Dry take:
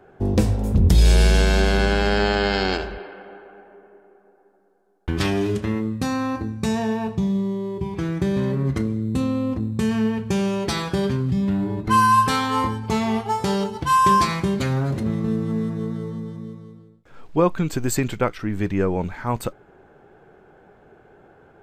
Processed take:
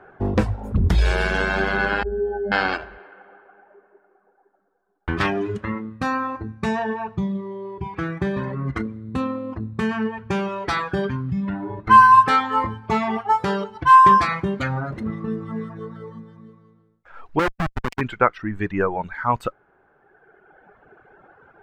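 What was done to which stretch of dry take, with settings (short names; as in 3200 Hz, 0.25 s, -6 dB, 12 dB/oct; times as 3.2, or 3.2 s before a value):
2.03–2.52 spectral contrast raised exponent 3.6
17.39–18.01 Schmitt trigger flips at -18.5 dBFS
whole clip: LPF 2400 Hz 6 dB/oct; reverb removal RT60 2 s; bell 1400 Hz +12 dB 1.9 oct; gain -1.5 dB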